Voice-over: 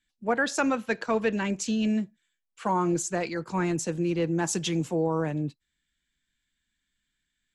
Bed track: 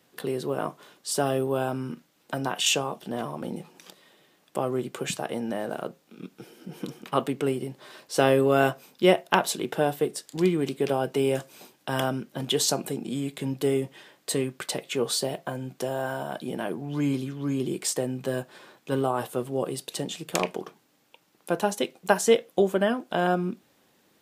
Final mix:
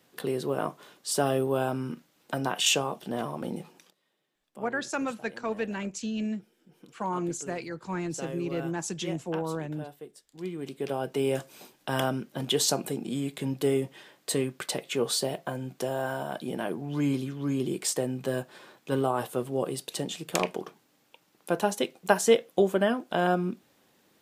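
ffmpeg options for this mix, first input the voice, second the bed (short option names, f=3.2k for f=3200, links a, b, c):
-filter_complex "[0:a]adelay=4350,volume=-5.5dB[a];[1:a]volume=17dB,afade=t=out:st=3.69:d=0.22:silence=0.125893,afade=t=in:st=10.31:d=1.21:silence=0.133352[b];[a][b]amix=inputs=2:normalize=0"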